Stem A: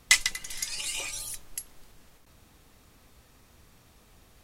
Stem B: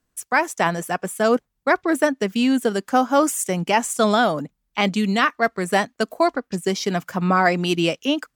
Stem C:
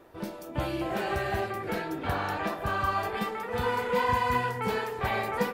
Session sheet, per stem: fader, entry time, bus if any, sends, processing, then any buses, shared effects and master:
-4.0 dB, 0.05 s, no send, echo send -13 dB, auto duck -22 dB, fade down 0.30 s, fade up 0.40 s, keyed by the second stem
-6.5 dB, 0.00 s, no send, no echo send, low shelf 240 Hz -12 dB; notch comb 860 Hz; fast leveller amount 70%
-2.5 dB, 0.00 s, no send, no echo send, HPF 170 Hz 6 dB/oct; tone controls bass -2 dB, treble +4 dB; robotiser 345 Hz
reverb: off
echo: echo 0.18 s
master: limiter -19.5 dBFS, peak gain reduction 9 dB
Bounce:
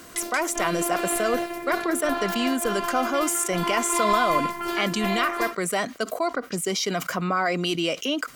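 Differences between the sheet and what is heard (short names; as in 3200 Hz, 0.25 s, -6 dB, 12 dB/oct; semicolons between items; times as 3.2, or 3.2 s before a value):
stem C -2.5 dB -> +5.0 dB; master: missing limiter -19.5 dBFS, peak gain reduction 9 dB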